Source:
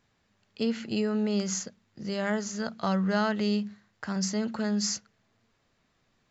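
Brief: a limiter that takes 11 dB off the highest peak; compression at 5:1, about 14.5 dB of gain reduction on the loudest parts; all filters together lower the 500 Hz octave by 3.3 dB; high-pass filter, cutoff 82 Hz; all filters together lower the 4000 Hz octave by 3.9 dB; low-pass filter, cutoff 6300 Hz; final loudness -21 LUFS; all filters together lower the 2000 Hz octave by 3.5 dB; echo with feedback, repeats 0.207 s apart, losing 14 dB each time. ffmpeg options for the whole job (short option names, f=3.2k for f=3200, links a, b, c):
-af "highpass=82,lowpass=6.3k,equalizer=f=500:t=o:g=-4,equalizer=f=2k:t=o:g=-4,equalizer=f=4k:t=o:g=-3,acompressor=threshold=-42dB:ratio=5,alimiter=level_in=13dB:limit=-24dB:level=0:latency=1,volume=-13dB,aecho=1:1:207|414:0.2|0.0399,volume=25dB"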